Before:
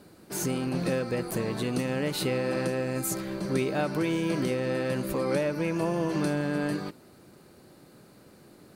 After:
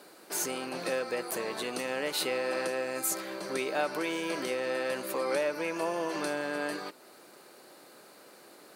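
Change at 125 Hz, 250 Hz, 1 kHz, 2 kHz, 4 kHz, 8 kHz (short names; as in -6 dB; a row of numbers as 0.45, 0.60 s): -20.0, -9.5, +0.5, +1.0, +1.0, +1.5 dB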